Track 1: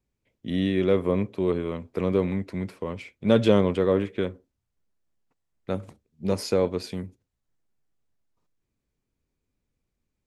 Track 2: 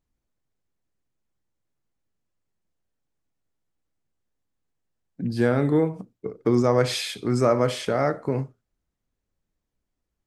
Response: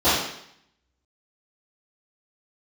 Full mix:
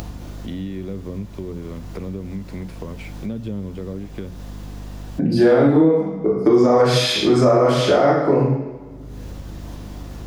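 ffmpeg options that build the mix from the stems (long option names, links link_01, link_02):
-filter_complex "[0:a]aeval=exprs='val(0)+0.0126*(sin(2*PI*50*n/s)+sin(2*PI*2*50*n/s)/2+sin(2*PI*3*50*n/s)/3+sin(2*PI*4*50*n/s)/4+sin(2*PI*5*50*n/s)/5)':channel_layout=same,acrossover=split=260[link_01][link_02];[link_02]acompressor=threshold=-38dB:ratio=5[link_03];[link_01][link_03]amix=inputs=2:normalize=0,volume=-19dB[link_04];[1:a]acompressor=mode=upward:threshold=-58dB:ratio=2.5,volume=0dB,asplit=2[link_05][link_06];[link_06]volume=-12dB[link_07];[2:a]atrim=start_sample=2205[link_08];[link_07][link_08]afir=irnorm=-1:irlink=0[link_09];[link_04][link_05][link_09]amix=inputs=3:normalize=0,bandreject=frequency=60:width_type=h:width=6,bandreject=frequency=120:width_type=h:width=6,bandreject=frequency=180:width_type=h:width=6,acompressor=mode=upward:threshold=-12dB:ratio=2.5,alimiter=limit=-5.5dB:level=0:latency=1:release=181"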